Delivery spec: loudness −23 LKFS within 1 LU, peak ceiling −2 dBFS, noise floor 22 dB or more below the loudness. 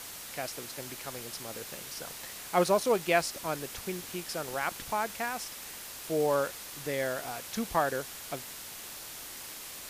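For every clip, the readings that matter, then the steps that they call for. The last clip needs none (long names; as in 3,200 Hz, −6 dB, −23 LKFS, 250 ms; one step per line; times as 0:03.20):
background noise floor −44 dBFS; target noise floor −55 dBFS; integrated loudness −33.0 LKFS; sample peak −10.5 dBFS; target loudness −23.0 LKFS
→ broadband denoise 11 dB, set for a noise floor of −44 dBFS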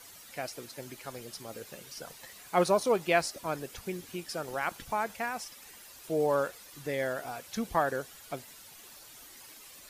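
background noise floor −52 dBFS; target noise floor −55 dBFS
→ broadband denoise 6 dB, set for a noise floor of −52 dBFS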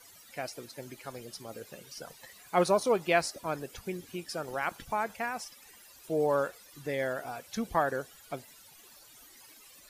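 background noise floor −56 dBFS; integrated loudness −33.0 LKFS; sample peak −11.0 dBFS; target loudness −23.0 LKFS
→ level +10 dB
brickwall limiter −2 dBFS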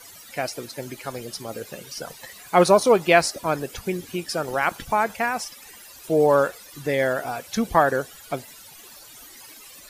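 integrated loudness −23.0 LKFS; sample peak −2.0 dBFS; background noise floor −46 dBFS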